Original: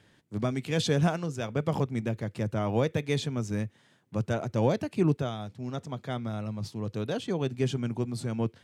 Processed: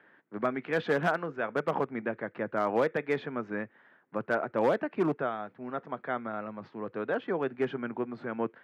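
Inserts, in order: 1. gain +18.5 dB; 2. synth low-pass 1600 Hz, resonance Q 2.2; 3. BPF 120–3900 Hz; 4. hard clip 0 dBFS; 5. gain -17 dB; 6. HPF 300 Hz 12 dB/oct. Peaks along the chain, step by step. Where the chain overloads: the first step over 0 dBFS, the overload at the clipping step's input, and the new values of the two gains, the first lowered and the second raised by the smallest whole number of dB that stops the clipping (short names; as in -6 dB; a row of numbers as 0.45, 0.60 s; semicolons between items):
+5.5, +8.0, +7.5, 0.0, -17.0, -14.0 dBFS; step 1, 7.5 dB; step 1 +10.5 dB, step 5 -9 dB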